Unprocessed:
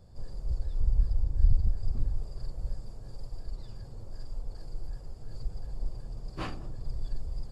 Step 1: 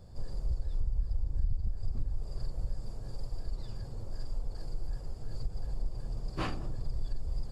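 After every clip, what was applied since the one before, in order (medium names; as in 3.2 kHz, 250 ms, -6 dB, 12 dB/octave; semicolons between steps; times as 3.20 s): compression 4:1, threshold -30 dBFS, peak gain reduction 13.5 dB; trim +3 dB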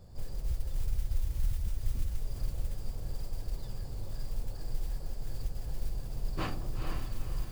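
modulation noise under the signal 26 dB; echo that smears into a reverb 468 ms, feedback 40%, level -5 dB; trim -1 dB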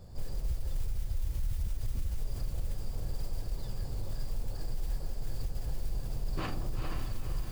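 peak limiter -28 dBFS, peak gain reduction 9.5 dB; trim +3 dB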